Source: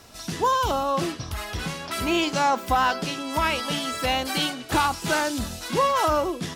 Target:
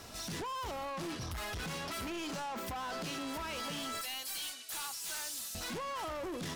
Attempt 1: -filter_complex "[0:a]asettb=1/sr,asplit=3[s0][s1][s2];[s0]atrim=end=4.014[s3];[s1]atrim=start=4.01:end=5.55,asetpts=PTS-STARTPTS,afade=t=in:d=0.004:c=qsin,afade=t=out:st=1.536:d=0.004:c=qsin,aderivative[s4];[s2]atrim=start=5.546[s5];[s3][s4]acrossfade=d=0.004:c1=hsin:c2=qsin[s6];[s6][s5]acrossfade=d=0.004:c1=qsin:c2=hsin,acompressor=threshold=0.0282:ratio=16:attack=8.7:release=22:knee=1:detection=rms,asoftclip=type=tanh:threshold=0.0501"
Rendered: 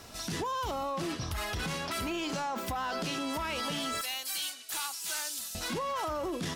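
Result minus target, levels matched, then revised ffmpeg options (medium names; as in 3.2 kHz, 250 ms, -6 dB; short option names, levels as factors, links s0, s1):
saturation: distortion -11 dB
-filter_complex "[0:a]asettb=1/sr,asplit=3[s0][s1][s2];[s0]atrim=end=4.014[s3];[s1]atrim=start=4.01:end=5.55,asetpts=PTS-STARTPTS,afade=t=in:d=0.004:c=qsin,afade=t=out:st=1.536:d=0.004:c=qsin,aderivative[s4];[s2]atrim=start=5.546[s5];[s3][s4]acrossfade=d=0.004:c1=hsin:c2=qsin[s6];[s6][s5]acrossfade=d=0.004:c1=qsin:c2=hsin,acompressor=threshold=0.0282:ratio=16:attack=8.7:release=22:knee=1:detection=rms,asoftclip=type=tanh:threshold=0.0141"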